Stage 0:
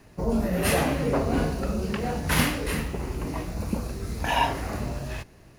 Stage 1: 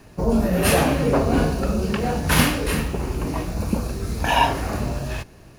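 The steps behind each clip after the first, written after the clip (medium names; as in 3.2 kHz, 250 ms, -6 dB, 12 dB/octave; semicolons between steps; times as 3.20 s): band-stop 2 kHz, Q 13; trim +5.5 dB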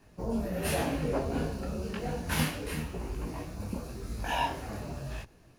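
dynamic bell 1.2 kHz, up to -4 dB, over -40 dBFS, Q 5.1; detune thickener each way 33 cents; trim -8.5 dB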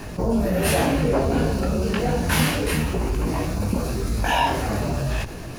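level flattener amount 50%; trim +7.5 dB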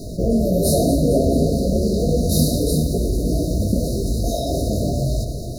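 echo whose repeats swap between lows and highs 111 ms, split 930 Hz, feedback 79%, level -9.5 dB; FFT band-reject 720–3700 Hz; trim +3.5 dB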